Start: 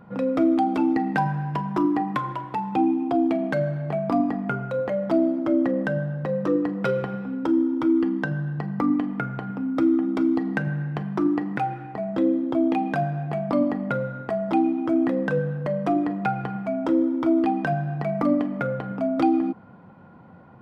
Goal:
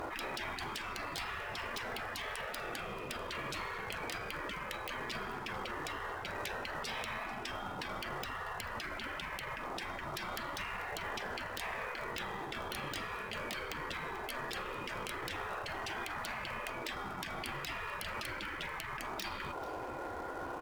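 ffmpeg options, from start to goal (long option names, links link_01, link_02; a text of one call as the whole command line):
ffmpeg -i in.wav -af "afftfilt=real='re*lt(hypot(re,im),0.0891)':imag='im*lt(hypot(re,im),0.0891)':win_size=1024:overlap=0.75,aphaser=in_gain=1:out_gain=1:delay=1.3:decay=0.29:speed=0.11:type=sinusoidal,afftfilt=real='re*lt(hypot(re,im),0.0126)':imag='im*lt(hypot(re,im),0.0126)':win_size=1024:overlap=0.75,acrusher=bits=3:mode=log:mix=0:aa=0.000001,aemphasis=mode=reproduction:type=cd,aeval=exprs='(mod(84.1*val(0)+1,2)-1)/84.1':channel_layout=same,aecho=1:1:440:0.112,volume=13.5dB" out.wav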